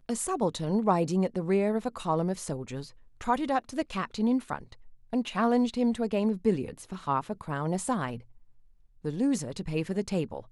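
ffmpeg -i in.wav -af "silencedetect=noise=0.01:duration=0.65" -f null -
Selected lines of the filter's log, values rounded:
silence_start: 8.20
silence_end: 9.05 | silence_duration: 0.84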